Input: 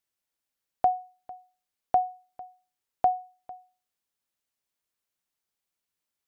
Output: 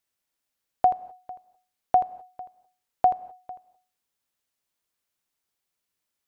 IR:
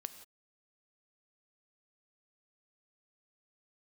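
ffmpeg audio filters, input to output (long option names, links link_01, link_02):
-filter_complex "[0:a]asplit=2[link_01][link_02];[1:a]atrim=start_sample=2205,adelay=81[link_03];[link_02][link_03]afir=irnorm=-1:irlink=0,volume=-7.5dB[link_04];[link_01][link_04]amix=inputs=2:normalize=0,volume=3dB"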